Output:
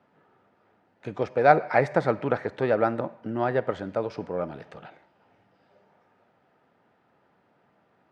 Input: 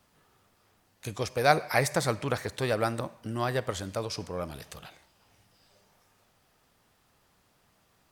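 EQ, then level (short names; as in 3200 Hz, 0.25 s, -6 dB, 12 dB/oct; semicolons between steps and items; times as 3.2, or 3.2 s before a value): HPF 180 Hz 12 dB/oct; LPF 1500 Hz 12 dB/oct; notch 1100 Hz, Q 7; +6.0 dB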